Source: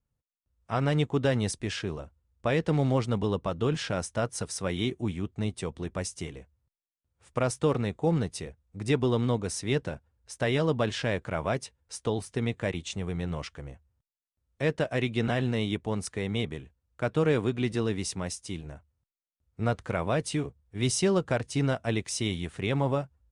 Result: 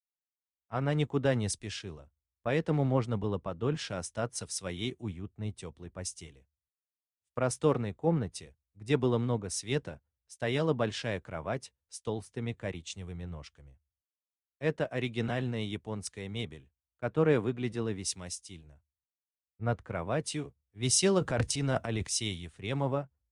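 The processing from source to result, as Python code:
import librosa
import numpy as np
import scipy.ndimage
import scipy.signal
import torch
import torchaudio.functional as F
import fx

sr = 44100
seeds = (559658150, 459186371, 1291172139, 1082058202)

y = fx.transient(x, sr, attack_db=-2, sustain_db=12, at=(21.18, 22.07))
y = fx.band_widen(y, sr, depth_pct=100)
y = F.gain(torch.from_numpy(y), -4.5).numpy()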